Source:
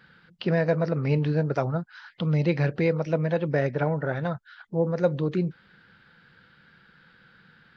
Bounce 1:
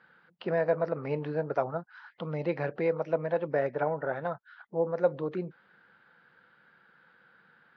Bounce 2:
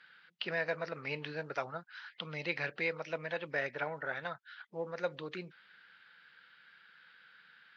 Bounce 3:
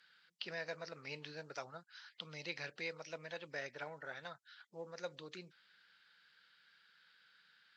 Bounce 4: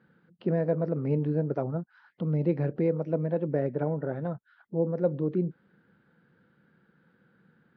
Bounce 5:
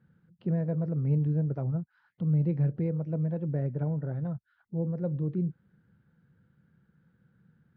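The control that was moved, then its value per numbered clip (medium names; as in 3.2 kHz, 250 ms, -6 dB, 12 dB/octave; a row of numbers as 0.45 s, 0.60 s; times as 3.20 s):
band-pass filter, frequency: 810 Hz, 2.6 kHz, 6.8 kHz, 300 Hz, 110 Hz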